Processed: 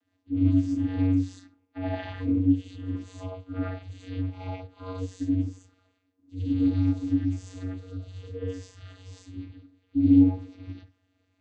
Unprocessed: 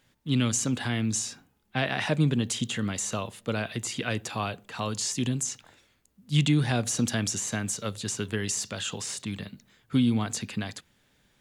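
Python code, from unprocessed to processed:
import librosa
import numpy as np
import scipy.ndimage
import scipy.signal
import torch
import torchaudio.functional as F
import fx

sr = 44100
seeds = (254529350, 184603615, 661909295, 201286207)

y = fx.hpss_only(x, sr, part='harmonic')
y = fx.rev_gated(y, sr, seeds[0], gate_ms=130, shape='rising', drr_db=-7.0)
y = fx.vocoder(y, sr, bands=16, carrier='square', carrier_hz=93.1)
y = y * librosa.db_to_amplitude(-3.5)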